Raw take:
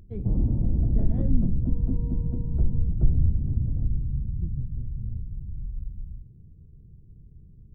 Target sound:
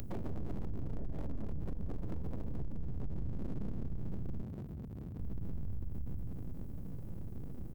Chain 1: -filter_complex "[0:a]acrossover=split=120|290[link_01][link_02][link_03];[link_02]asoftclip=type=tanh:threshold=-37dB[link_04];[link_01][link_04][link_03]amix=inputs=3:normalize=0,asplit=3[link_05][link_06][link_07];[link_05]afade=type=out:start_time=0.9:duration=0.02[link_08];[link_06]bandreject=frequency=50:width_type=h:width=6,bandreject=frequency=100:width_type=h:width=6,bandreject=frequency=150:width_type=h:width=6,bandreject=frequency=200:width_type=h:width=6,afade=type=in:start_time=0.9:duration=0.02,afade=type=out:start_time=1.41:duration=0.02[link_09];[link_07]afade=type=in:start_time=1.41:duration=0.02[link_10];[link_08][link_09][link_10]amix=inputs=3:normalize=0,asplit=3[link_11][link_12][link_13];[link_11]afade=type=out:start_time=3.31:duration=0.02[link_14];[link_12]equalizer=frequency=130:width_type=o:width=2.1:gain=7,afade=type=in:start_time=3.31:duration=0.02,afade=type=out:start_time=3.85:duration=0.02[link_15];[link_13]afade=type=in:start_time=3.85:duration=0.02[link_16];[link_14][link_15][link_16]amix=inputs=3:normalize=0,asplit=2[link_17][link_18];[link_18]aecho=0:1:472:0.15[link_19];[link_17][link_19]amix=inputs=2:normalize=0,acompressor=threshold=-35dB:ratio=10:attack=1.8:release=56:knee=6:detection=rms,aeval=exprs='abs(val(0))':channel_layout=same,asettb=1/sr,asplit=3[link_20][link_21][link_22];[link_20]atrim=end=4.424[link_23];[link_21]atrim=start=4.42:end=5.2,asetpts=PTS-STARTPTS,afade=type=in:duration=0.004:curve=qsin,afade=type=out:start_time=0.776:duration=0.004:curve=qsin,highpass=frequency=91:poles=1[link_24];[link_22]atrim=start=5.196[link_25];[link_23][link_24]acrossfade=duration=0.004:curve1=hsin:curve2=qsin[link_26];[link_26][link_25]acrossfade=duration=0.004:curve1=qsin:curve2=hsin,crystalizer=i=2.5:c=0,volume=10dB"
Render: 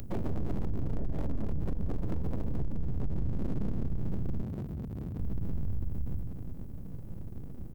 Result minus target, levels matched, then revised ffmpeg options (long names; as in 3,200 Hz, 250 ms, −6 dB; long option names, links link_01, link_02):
downward compressor: peak gain reduction −7 dB
-filter_complex "[0:a]acrossover=split=120|290[link_01][link_02][link_03];[link_02]asoftclip=type=tanh:threshold=-37dB[link_04];[link_01][link_04][link_03]amix=inputs=3:normalize=0,asplit=3[link_05][link_06][link_07];[link_05]afade=type=out:start_time=0.9:duration=0.02[link_08];[link_06]bandreject=frequency=50:width_type=h:width=6,bandreject=frequency=100:width_type=h:width=6,bandreject=frequency=150:width_type=h:width=6,bandreject=frequency=200:width_type=h:width=6,afade=type=in:start_time=0.9:duration=0.02,afade=type=out:start_time=1.41:duration=0.02[link_09];[link_07]afade=type=in:start_time=1.41:duration=0.02[link_10];[link_08][link_09][link_10]amix=inputs=3:normalize=0,asplit=3[link_11][link_12][link_13];[link_11]afade=type=out:start_time=3.31:duration=0.02[link_14];[link_12]equalizer=frequency=130:width_type=o:width=2.1:gain=7,afade=type=in:start_time=3.31:duration=0.02,afade=type=out:start_time=3.85:duration=0.02[link_15];[link_13]afade=type=in:start_time=3.85:duration=0.02[link_16];[link_14][link_15][link_16]amix=inputs=3:normalize=0,asplit=2[link_17][link_18];[link_18]aecho=0:1:472:0.15[link_19];[link_17][link_19]amix=inputs=2:normalize=0,acompressor=threshold=-42.5dB:ratio=10:attack=1.8:release=56:knee=6:detection=rms,aeval=exprs='abs(val(0))':channel_layout=same,asettb=1/sr,asplit=3[link_20][link_21][link_22];[link_20]atrim=end=4.424[link_23];[link_21]atrim=start=4.42:end=5.2,asetpts=PTS-STARTPTS,afade=type=in:duration=0.004:curve=qsin,afade=type=out:start_time=0.776:duration=0.004:curve=qsin,highpass=frequency=91:poles=1[link_24];[link_22]atrim=start=5.196[link_25];[link_23][link_24]acrossfade=duration=0.004:curve1=hsin:curve2=qsin[link_26];[link_26][link_25]acrossfade=duration=0.004:curve1=qsin:curve2=hsin,crystalizer=i=2.5:c=0,volume=10dB"